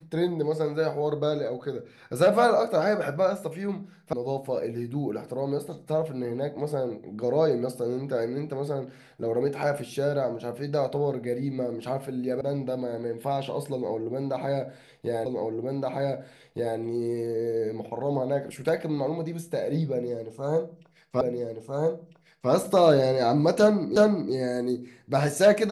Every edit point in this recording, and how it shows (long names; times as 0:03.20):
0:04.13: cut off before it has died away
0:12.41: cut off before it has died away
0:15.26: the same again, the last 1.52 s
0:21.21: the same again, the last 1.3 s
0:23.96: the same again, the last 0.37 s